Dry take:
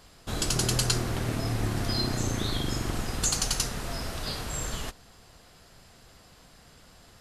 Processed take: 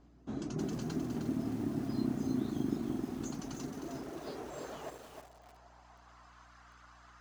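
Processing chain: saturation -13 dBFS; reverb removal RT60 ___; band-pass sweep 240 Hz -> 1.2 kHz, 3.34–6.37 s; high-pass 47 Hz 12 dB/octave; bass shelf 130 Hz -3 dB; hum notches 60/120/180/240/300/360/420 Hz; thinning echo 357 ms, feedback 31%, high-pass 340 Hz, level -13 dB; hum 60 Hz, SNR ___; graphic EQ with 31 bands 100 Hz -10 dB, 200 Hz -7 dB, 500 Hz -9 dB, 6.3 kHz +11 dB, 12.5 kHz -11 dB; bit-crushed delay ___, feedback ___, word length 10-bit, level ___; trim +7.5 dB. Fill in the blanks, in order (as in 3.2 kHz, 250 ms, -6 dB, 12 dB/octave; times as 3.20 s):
0.67 s, 25 dB, 310 ms, 35%, -5 dB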